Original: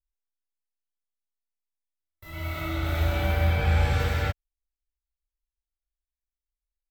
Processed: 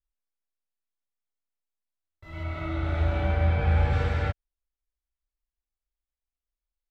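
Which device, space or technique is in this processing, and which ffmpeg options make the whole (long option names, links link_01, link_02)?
through cloth: -filter_complex "[0:a]asettb=1/sr,asplit=3[link_01][link_02][link_03];[link_01]atrim=end=2.434[link_04];[link_02]atrim=start=2.43:end=3.93,asetpts=PTS-STARTPTS,afade=type=in:duration=0.004:curve=qsin,afade=type=out:start_time=1.496:duration=0.004:curve=qsin,highshelf=frequency=4900:gain=-6[link_05];[link_03]atrim=start=3.926[link_06];[link_04][link_05]acrossfade=duration=0.004:curve1=hsin:curve2=qsin[link_07];[link_07][link_06]acrossfade=duration=0.004:curve1=qsin:curve2=hsin,lowpass=7500,highshelf=frequency=3100:gain=-11"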